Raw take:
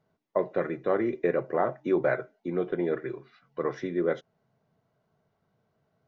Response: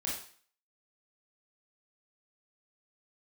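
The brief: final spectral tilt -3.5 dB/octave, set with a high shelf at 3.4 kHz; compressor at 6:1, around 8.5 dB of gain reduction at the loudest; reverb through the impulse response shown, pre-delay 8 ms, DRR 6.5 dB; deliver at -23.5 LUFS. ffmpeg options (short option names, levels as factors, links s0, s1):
-filter_complex "[0:a]highshelf=f=3400:g=7.5,acompressor=threshold=0.0355:ratio=6,asplit=2[s0][s1];[1:a]atrim=start_sample=2205,adelay=8[s2];[s1][s2]afir=irnorm=-1:irlink=0,volume=0.335[s3];[s0][s3]amix=inputs=2:normalize=0,volume=3.55"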